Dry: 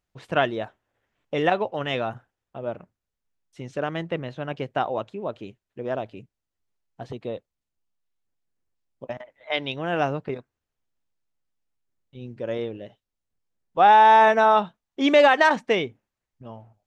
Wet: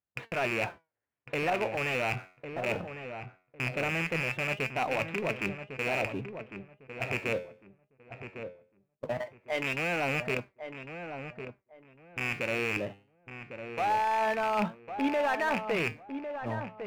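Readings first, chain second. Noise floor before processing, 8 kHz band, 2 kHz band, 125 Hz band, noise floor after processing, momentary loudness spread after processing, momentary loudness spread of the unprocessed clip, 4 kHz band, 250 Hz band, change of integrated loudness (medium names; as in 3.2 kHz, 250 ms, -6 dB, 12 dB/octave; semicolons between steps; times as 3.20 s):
under -85 dBFS, no reading, -4.0 dB, -2.0 dB, -79 dBFS, 16 LU, 22 LU, -8.0 dB, -6.0 dB, -10.0 dB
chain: rattle on loud lows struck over -36 dBFS, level -12 dBFS; high-pass 64 Hz 24 dB/octave; gate -41 dBFS, range -45 dB; low-pass 2.7 kHz 24 dB/octave; reverse; compression 4:1, threshold -32 dBFS, peak gain reduction 17 dB; reverse; flange 0.2 Hz, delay 3.5 ms, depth 8 ms, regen +79%; power-law waveshaper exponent 0.7; on a send: filtered feedback delay 1103 ms, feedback 24%, low-pass 1.5 kHz, level -8 dB; on the sum: trim +4 dB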